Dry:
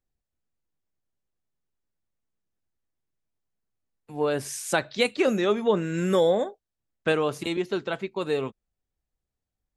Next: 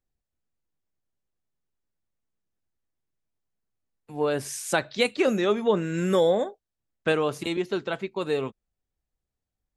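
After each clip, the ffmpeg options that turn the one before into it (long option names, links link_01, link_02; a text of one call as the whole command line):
ffmpeg -i in.wav -af anull out.wav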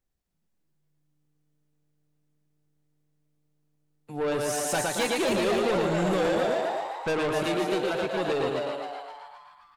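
ffmpeg -i in.wav -filter_complex "[0:a]asplit=2[link_01][link_02];[link_02]aecho=0:1:112|224|336|448:0.596|0.197|0.0649|0.0214[link_03];[link_01][link_03]amix=inputs=2:normalize=0,asoftclip=type=tanh:threshold=-25.5dB,asplit=2[link_04][link_05];[link_05]asplit=6[link_06][link_07][link_08][link_09][link_10][link_11];[link_06]adelay=262,afreqshift=150,volume=-4dB[link_12];[link_07]adelay=524,afreqshift=300,volume=-10.9dB[link_13];[link_08]adelay=786,afreqshift=450,volume=-17.9dB[link_14];[link_09]adelay=1048,afreqshift=600,volume=-24.8dB[link_15];[link_10]adelay=1310,afreqshift=750,volume=-31.7dB[link_16];[link_11]adelay=1572,afreqshift=900,volume=-38.7dB[link_17];[link_12][link_13][link_14][link_15][link_16][link_17]amix=inputs=6:normalize=0[link_18];[link_04][link_18]amix=inputs=2:normalize=0,volume=2dB" out.wav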